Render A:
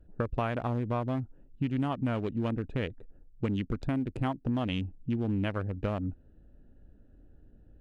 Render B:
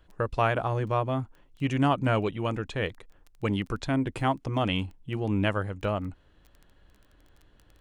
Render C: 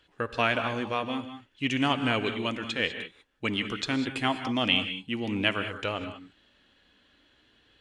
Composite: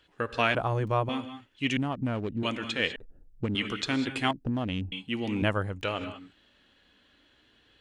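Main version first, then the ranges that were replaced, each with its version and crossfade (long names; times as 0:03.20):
C
0:00.55–0:01.09: punch in from B
0:01.77–0:02.43: punch in from A
0:02.96–0:03.55: punch in from A
0:04.31–0:04.92: punch in from A
0:05.42–0:05.83: punch in from B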